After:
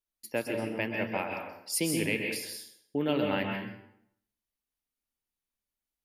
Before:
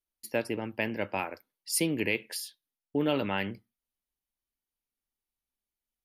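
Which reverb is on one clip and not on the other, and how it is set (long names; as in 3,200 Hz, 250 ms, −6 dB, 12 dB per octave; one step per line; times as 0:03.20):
dense smooth reverb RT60 0.71 s, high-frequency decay 0.8×, pre-delay 115 ms, DRR 2 dB
level −2 dB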